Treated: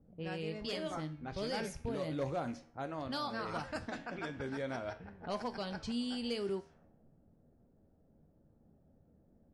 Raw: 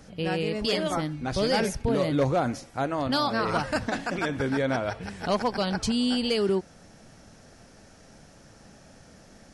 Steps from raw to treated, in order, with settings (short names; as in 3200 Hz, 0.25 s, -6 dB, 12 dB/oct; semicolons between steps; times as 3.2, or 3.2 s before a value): rattling part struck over -26 dBFS, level -34 dBFS; low-pass opened by the level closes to 380 Hz, open at -22 dBFS; resonator 79 Hz, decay 0.37 s, harmonics all, mix 60%; gain -7.5 dB